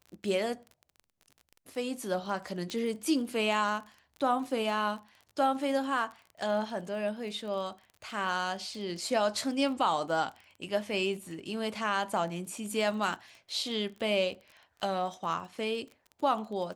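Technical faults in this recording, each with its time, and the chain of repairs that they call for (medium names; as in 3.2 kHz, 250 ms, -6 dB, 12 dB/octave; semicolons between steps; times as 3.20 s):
crackle 29 per s -40 dBFS
2.70 s: pop -23 dBFS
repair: de-click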